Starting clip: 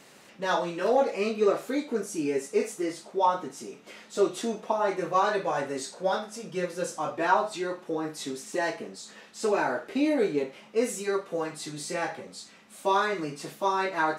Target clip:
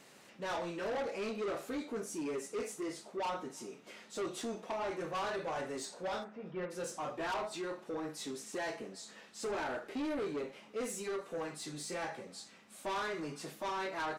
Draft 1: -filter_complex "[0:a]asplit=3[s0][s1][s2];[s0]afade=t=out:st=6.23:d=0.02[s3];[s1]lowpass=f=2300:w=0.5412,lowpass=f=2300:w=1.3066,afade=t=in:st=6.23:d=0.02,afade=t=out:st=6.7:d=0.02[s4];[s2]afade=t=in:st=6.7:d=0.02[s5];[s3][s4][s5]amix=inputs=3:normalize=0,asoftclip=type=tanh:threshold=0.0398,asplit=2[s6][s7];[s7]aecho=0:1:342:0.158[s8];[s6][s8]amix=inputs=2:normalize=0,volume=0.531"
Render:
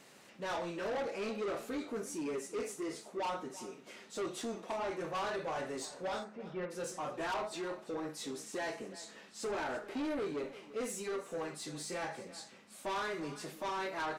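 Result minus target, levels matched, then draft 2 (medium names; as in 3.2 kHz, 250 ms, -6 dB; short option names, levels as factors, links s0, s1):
echo-to-direct +11.5 dB
-filter_complex "[0:a]asplit=3[s0][s1][s2];[s0]afade=t=out:st=6.23:d=0.02[s3];[s1]lowpass=f=2300:w=0.5412,lowpass=f=2300:w=1.3066,afade=t=in:st=6.23:d=0.02,afade=t=out:st=6.7:d=0.02[s4];[s2]afade=t=in:st=6.7:d=0.02[s5];[s3][s4][s5]amix=inputs=3:normalize=0,asoftclip=type=tanh:threshold=0.0398,asplit=2[s6][s7];[s7]aecho=0:1:342:0.0422[s8];[s6][s8]amix=inputs=2:normalize=0,volume=0.531"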